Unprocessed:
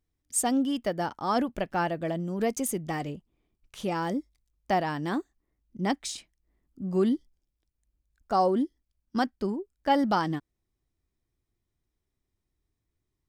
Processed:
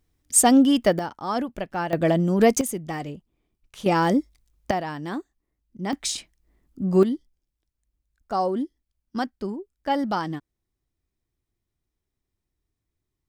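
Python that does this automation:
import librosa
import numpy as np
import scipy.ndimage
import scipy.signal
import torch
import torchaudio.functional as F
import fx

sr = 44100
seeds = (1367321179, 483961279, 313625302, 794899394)

y = fx.gain(x, sr, db=fx.steps((0.0, 10.0), (0.99, 0.0), (1.93, 10.5), (2.61, 1.0), (3.86, 9.5), (4.71, -1.0), (5.93, 8.0), (7.03, -0.5)))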